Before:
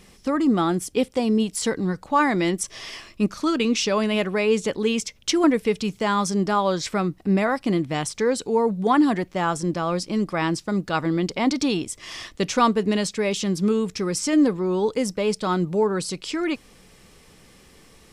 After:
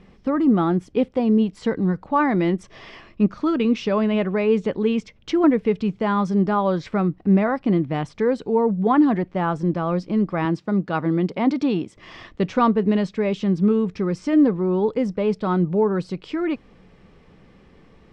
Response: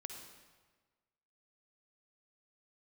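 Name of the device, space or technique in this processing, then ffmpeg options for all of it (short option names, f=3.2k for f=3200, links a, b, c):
phone in a pocket: -filter_complex "[0:a]lowpass=3.4k,equalizer=f=180:t=o:w=0.77:g=3,highshelf=f=2k:g=-9.5,asettb=1/sr,asplit=3[a][b][c];[a]atrim=end=10.454[d];[b]atrim=start=10.45:end=11.97,asetpts=PTS-STARTPTS,afade=t=in:d=0.004:c=qsin,afade=t=out:st=1.516:d=0.004:c=qsin,highpass=120[e];[c]atrim=start=11.966[f];[d][e]acrossfade=d=0.004:c1=hsin:c2=qsin[g];[g][f]acrossfade=d=0.004:c1=qsin:c2=hsin,volume=1.5dB"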